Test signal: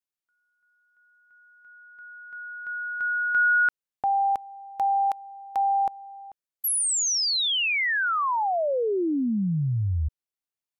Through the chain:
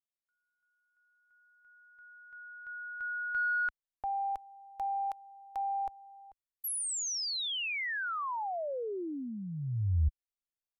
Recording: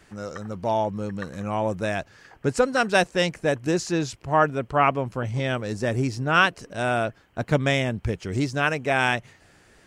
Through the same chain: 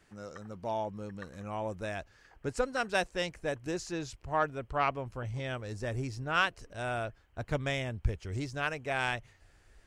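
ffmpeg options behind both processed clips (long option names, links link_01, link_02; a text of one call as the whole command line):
ffmpeg -i in.wav -af "asubboost=boost=8.5:cutoff=61,aeval=exprs='0.531*(cos(1*acos(clip(val(0)/0.531,-1,1)))-cos(1*PI/2))+0.0422*(cos(3*acos(clip(val(0)/0.531,-1,1)))-cos(3*PI/2))':channel_layout=same,volume=-8dB" out.wav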